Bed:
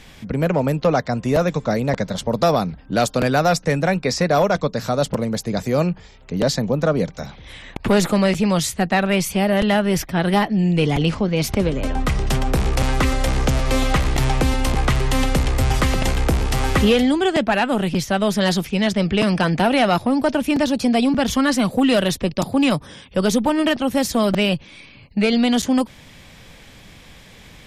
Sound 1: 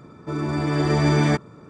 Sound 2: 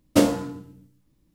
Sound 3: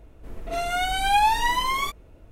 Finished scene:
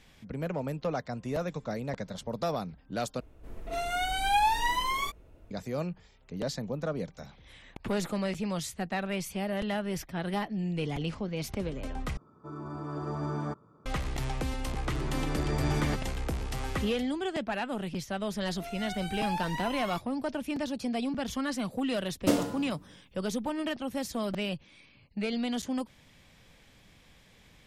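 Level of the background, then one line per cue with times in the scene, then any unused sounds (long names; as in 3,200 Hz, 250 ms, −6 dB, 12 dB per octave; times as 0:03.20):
bed −14.5 dB
0:03.20: overwrite with 3 −5.5 dB
0:12.17: overwrite with 1 −15.5 dB + high shelf with overshoot 1,600 Hz −8 dB, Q 3
0:14.59: mix in 1 −12 dB
0:18.09: mix in 3 −15 dB
0:22.11: mix in 2 −7.5 dB + four-comb reverb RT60 0.59 s, combs from 33 ms, DRR 9.5 dB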